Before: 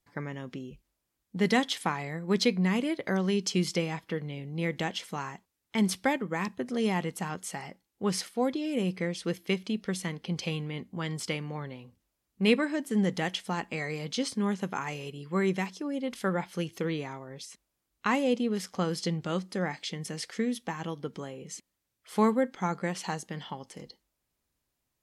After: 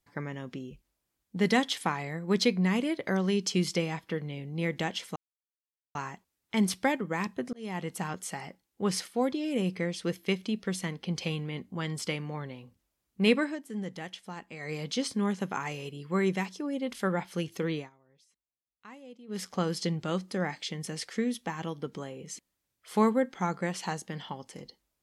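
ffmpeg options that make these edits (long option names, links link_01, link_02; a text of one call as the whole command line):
ffmpeg -i in.wav -filter_complex "[0:a]asplit=7[link_01][link_02][link_03][link_04][link_05][link_06][link_07];[link_01]atrim=end=5.16,asetpts=PTS-STARTPTS,afade=type=out:start_time=5.156:duration=0.004:curve=hsin,apad=pad_dur=0.79[link_08];[link_02]atrim=start=5.16:end=6.74,asetpts=PTS-STARTPTS,afade=type=in:duration=0.004:curve=hsin,afade=type=out:start_time=1.576:duration=0.004:curve=hsin[link_09];[link_03]atrim=start=6.74:end=12.8,asetpts=PTS-STARTPTS,afade=type=in:duration=0.43,afade=type=out:start_time=5.92:duration=0.14:silence=0.334965[link_10];[link_04]atrim=start=12.8:end=13.8,asetpts=PTS-STARTPTS,volume=-9.5dB[link_11];[link_05]atrim=start=13.8:end=17.11,asetpts=PTS-STARTPTS,afade=type=in:duration=0.14:silence=0.334965,afade=type=out:start_time=3.18:duration=0.13:silence=0.0794328[link_12];[link_06]atrim=start=17.11:end=18.48,asetpts=PTS-STARTPTS,volume=-22dB[link_13];[link_07]atrim=start=18.48,asetpts=PTS-STARTPTS,afade=type=in:duration=0.13:silence=0.0794328[link_14];[link_08][link_09][link_10][link_11][link_12][link_13][link_14]concat=n=7:v=0:a=1" out.wav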